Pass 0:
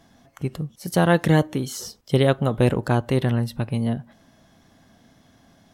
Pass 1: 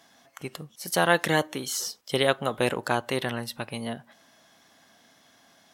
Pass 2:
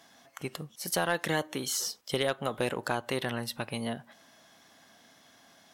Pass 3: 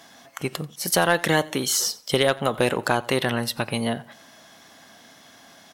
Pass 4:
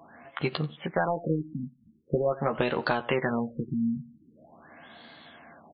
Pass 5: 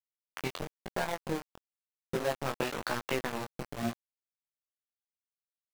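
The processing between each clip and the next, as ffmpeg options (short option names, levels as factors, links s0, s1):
-af "highpass=f=1100:p=1,volume=1.5"
-af "acompressor=threshold=0.0398:ratio=2,asoftclip=type=tanh:threshold=0.224"
-af "aecho=1:1:89|178:0.0794|0.023,volume=2.82"
-filter_complex "[0:a]acompressor=threshold=0.0708:ratio=4,asplit=2[s0][s1];[s1]adelay=13,volume=0.501[s2];[s0][s2]amix=inputs=2:normalize=0,afftfilt=real='re*lt(b*sr/1024,260*pow(4800/260,0.5+0.5*sin(2*PI*0.44*pts/sr)))':imag='im*lt(b*sr/1024,260*pow(4800/260,0.5+0.5*sin(2*PI*0.44*pts/sr)))':win_size=1024:overlap=0.75"
-af "aeval=exprs='val(0)*gte(abs(val(0)),0.0631)':c=same,flanger=delay=16:depth=7.1:speed=1,tremolo=f=130:d=0.519"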